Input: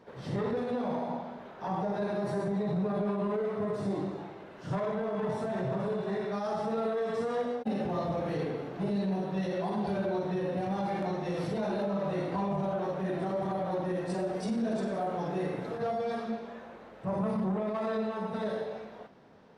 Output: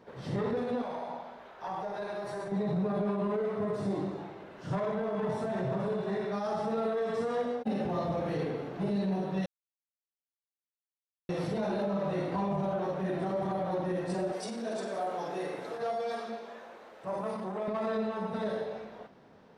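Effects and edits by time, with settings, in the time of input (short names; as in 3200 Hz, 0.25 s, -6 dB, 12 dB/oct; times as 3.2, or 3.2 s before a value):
0.82–2.52 bell 180 Hz -13 dB 2.2 oct
9.46–11.29 mute
14.32–17.68 tone controls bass -15 dB, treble +5 dB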